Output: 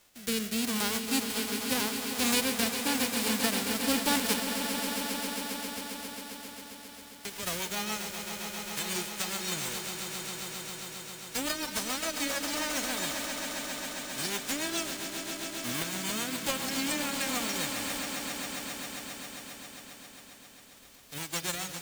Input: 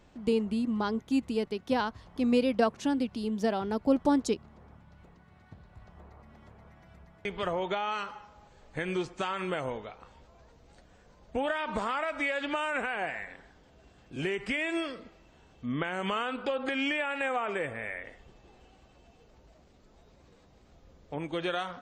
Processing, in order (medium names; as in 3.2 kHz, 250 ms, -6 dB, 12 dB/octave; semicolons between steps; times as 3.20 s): formants flattened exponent 0.1; rotary cabinet horn 0.85 Hz, later 7 Hz, at 5.64 s; echo with a slow build-up 134 ms, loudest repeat 5, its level -10 dB